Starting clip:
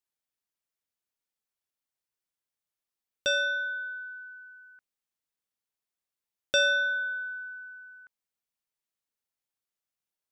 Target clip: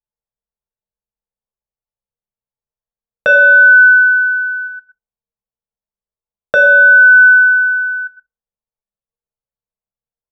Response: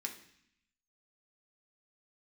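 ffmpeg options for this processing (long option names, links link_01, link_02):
-filter_complex "[0:a]asettb=1/sr,asplit=3[link_01][link_02][link_03];[link_01]atrim=end=4.674[link_04];[link_02]atrim=start=4.67:end=6.98,asetpts=PTS-STARTPTS,afade=type=in:duration=0.004:curve=qsin,afade=type=out:start_time=2.306:duration=0.004:curve=qsin,equalizer=frequency=2400:width_type=o:width=0.52:gain=-10[link_05];[link_03]atrim=start=6.976[link_06];[link_04][link_05]acrossfade=duration=0.004:curve1=hsin:curve2=qsin[link_07];[link_07][link_06]acrossfade=duration=0.004:curve1=qsin:curve2=hsin[link_08];[1:a]atrim=start_sample=2205,afade=type=out:start_time=0.25:duration=0.01,atrim=end_sample=11466[link_09];[link_08][link_09]afir=irnorm=-1:irlink=0,anlmdn=0.01,acompressor=threshold=-31dB:ratio=6,firequalizer=gain_entry='entry(190,0);entry(310,-11);entry(470,15);entry(4700,-26)':delay=0.05:min_phase=1,aecho=1:1:99|124:0.133|0.178,alimiter=level_in=25.5dB:limit=-1dB:release=50:level=0:latency=1,volume=-1dB"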